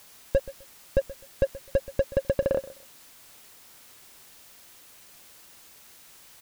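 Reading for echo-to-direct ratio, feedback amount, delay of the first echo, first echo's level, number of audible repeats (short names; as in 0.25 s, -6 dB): -18.0 dB, 23%, 0.128 s, -18.0 dB, 2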